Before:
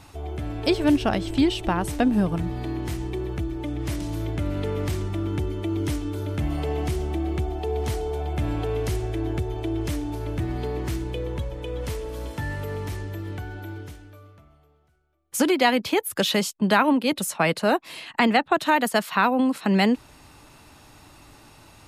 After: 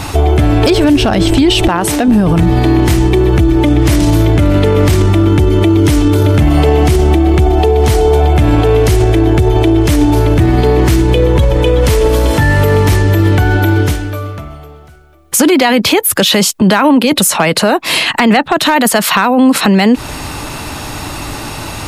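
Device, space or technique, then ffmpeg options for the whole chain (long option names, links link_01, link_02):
loud club master: -filter_complex "[0:a]acompressor=threshold=-23dB:ratio=3,asoftclip=type=hard:threshold=-16.5dB,alimiter=level_in=28dB:limit=-1dB:release=50:level=0:latency=1,asettb=1/sr,asplit=3[link_01][link_02][link_03];[link_01]atrim=end=1.684[link_04];[link_02]atrim=start=1.68:end=2.08,asetpts=PTS-STARTPTS,afade=type=in:duration=0.004:curve=qsin,afade=type=out:start_time=0.396:duration=0.004:curve=qsin,highpass=frequency=270:poles=1[link_05];[link_03]atrim=start=2.076[link_06];[link_04][link_05]acrossfade=duration=0.004:curve1=hsin:curve2=qsin[link_07];[link_07][link_06]acrossfade=duration=0.004:curve1=qsin:curve2=hsin,volume=-1dB"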